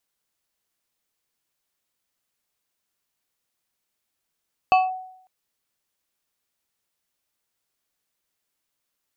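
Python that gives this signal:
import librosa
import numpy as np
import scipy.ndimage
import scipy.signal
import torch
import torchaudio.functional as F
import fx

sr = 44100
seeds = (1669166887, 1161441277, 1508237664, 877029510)

y = fx.fm2(sr, length_s=0.55, level_db=-10.5, carrier_hz=746.0, ratio=2.51, index=0.66, index_s=0.19, decay_s=0.71, shape='linear')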